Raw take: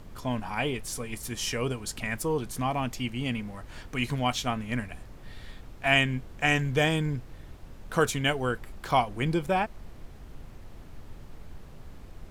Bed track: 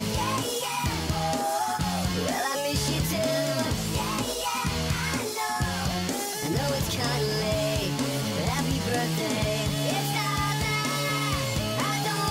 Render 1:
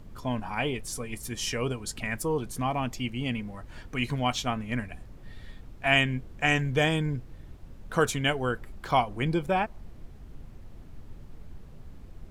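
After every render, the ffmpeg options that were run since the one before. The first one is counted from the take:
-af "afftdn=nr=6:nf=-47"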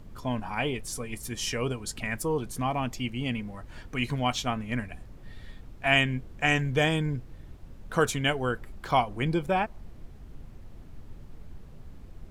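-af anull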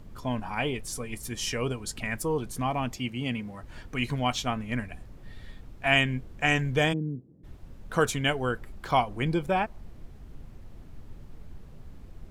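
-filter_complex "[0:a]asettb=1/sr,asplit=3[s0][s1][s2];[s0]atrim=end=2.964[s3];[s1]atrim=start=2.96:end=3.63,asetpts=PTS-STARTPTS,afade=t=in:d=0.004:c=qsin,afade=t=out:st=0.666:d=0.004:c=qsin,highpass=86[s4];[s2]atrim=start=3.626[s5];[s3][s4]acrossfade=d=0.004:c1=hsin:c2=qsin[s6];[s6][s5]acrossfade=d=0.004:c1=qsin:c2=hsin,asplit=3[s7][s8][s9];[s7]afade=t=out:st=6.92:d=0.02[s10];[s8]asuperpass=centerf=250:order=4:qfactor=1,afade=t=in:st=6.92:d=0.02,afade=t=out:st=7.43:d=0.02[s11];[s9]afade=t=in:st=7.43:d=0.02[s12];[s10][s11][s12]amix=inputs=3:normalize=0"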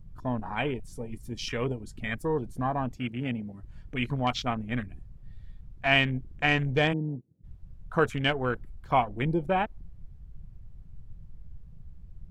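-af "afwtdn=0.0158"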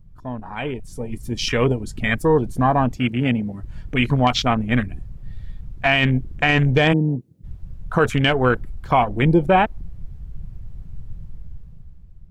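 -af "alimiter=limit=0.126:level=0:latency=1:release=26,dynaudnorm=f=180:g=11:m=3.98"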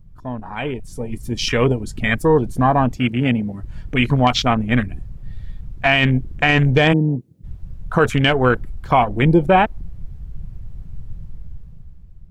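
-af "volume=1.26"

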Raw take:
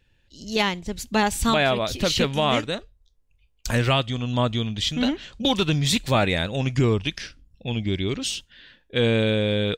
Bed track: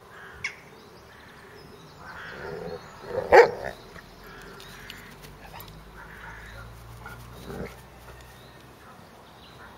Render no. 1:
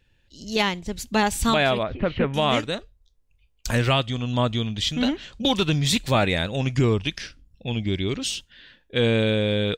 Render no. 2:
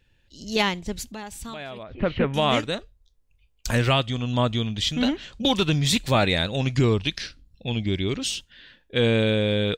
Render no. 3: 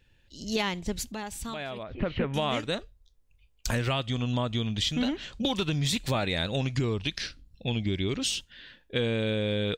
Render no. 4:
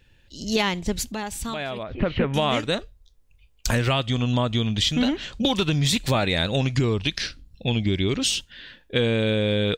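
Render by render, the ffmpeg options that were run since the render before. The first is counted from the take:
-filter_complex "[0:a]asettb=1/sr,asplit=3[s0][s1][s2];[s0]atrim=end=1.834[s3];[s1]atrim=start=1.83:end=2.34,asetpts=PTS-STARTPTS,afade=t=in:d=0.004:c=qsin,afade=t=out:st=0.506:d=0.004:c=qsin,lowpass=f=2100:w=0.5412,lowpass=f=2100:w=1.3066[s4];[s2]atrim=start=2.336[s5];[s3][s4]acrossfade=d=0.004:c1=hsin:c2=qsin[s6];[s6][s5]acrossfade=d=0.004:c1=qsin:c2=hsin"
-filter_complex "[0:a]asettb=1/sr,asplit=3[s0][s1][s2];[s0]atrim=end=1.054[s3];[s1]atrim=start=1.05:end=1.98,asetpts=PTS-STARTPTS,afade=t=in:d=0.004:c=qsin,afade=t=out:st=0.926:d=0.004:c=qsin,acompressor=threshold=0.00891:ratio=2.5:attack=3.2:release=140:knee=1:detection=peak[s4];[s2]atrim=start=1.976[s5];[s3][s4]acrossfade=d=0.004:c1=hsin:c2=qsin[s6];[s6][s5]acrossfade=d=0.004:c1=qsin:c2=hsin,asettb=1/sr,asplit=3[s7][s8][s9];[s7]atrim=end=6.194[s10];[s8]atrim=start=6.19:end=7.86,asetpts=PTS-STARTPTS,afade=t=in:d=0.004:c=qsin,afade=t=out:st=1.666:d=0.004:c=qsin,equalizer=f=4100:w=5:g=8.5[s11];[s9]atrim=start=7.856[s12];[s10][s11]acrossfade=d=0.004:c1=hsin:c2=qsin[s13];[s13][s12]acrossfade=d=0.004:c1=qsin:c2=hsin"
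-af "alimiter=limit=0.224:level=0:latency=1:release=197,acompressor=threshold=0.0631:ratio=6"
-af "volume=2"

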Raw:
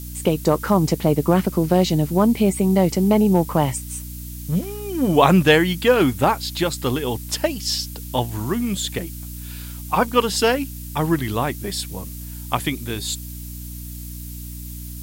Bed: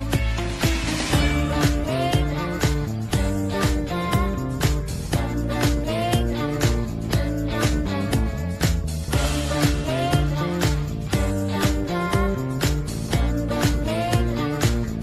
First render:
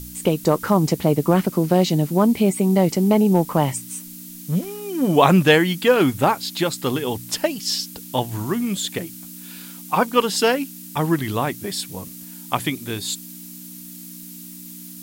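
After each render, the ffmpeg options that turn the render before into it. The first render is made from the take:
-af "bandreject=f=60:t=h:w=4,bandreject=f=120:t=h:w=4"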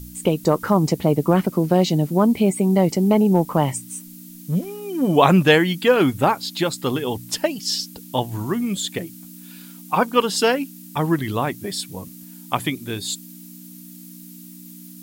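-af "afftdn=nr=6:nf=-38"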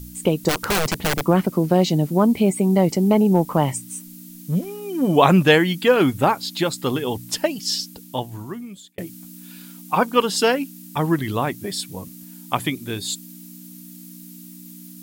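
-filter_complex "[0:a]asplit=3[s0][s1][s2];[s0]afade=t=out:st=0.48:d=0.02[s3];[s1]aeval=exprs='(mod(5.62*val(0)+1,2)-1)/5.62':c=same,afade=t=in:st=0.48:d=0.02,afade=t=out:st=1.24:d=0.02[s4];[s2]afade=t=in:st=1.24:d=0.02[s5];[s3][s4][s5]amix=inputs=3:normalize=0,asplit=2[s6][s7];[s6]atrim=end=8.98,asetpts=PTS-STARTPTS,afade=t=out:st=7.72:d=1.26[s8];[s7]atrim=start=8.98,asetpts=PTS-STARTPTS,afade=t=in:d=0.004:c=hsin[s9];[s8][s9]concat=n=2:v=0:a=1"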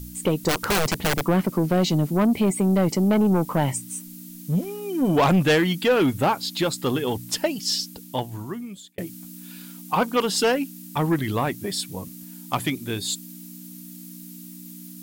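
-af "asoftclip=type=tanh:threshold=0.211"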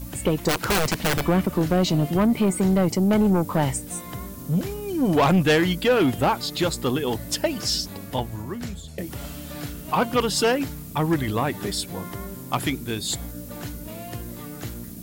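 -filter_complex "[1:a]volume=0.188[s0];[0:a][s0]amix=inputs=2:normalize=0"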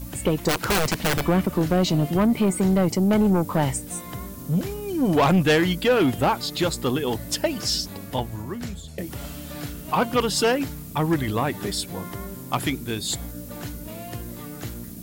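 -af anull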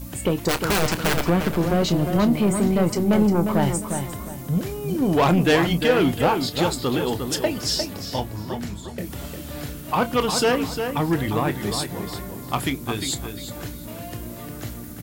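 -filter_complex "[0:a]asplit=2[s0][s1];[s1]adelay=29,volume=0.237[s2];[s0][s2]amix=inputs=2:normalize=0,asplit=2[s3][s4];[s4]adelay=353,lowpass=f=3700:p=1,volume=0.473,asplit=2[s5][s6];[s6]adelay=353,lowpass=f=3700:p=1,volume=0.32,asplit=2[s7][s8];[s8]adelay=353,lowpass=f=3700:p=1,volume=0.32,asplit=2[s9][s10];[s10]adelay=353,lowpass=f=3700:p=1,volume=0.32[s11];[s3][s5][s7][s9][s11]amix=inputs=5:normalize=0"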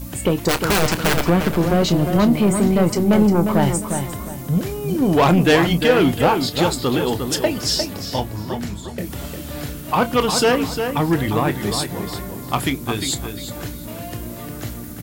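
-af "volume=1.5"

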